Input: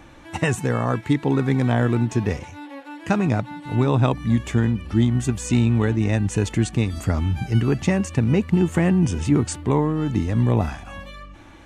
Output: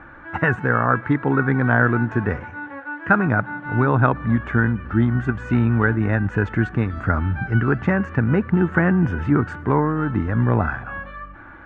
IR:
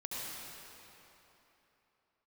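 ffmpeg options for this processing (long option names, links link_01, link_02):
-filter_complex "[0:a]lowpass=frequency=1500:width_type=q:width=5.9,asplit=2[link_01][link_02];[1:a]atrim=start_sample=2205,afade=type=out:start_time=0.39:duration=0.01,atrim=end_sample=17640,adelay=115[link_03];[link_02][link_03]afir=irnorm=-1:irlink=0,volume=-24.5dB[link_04];[link_01][link_04]amix=inputs=2:normalize=0"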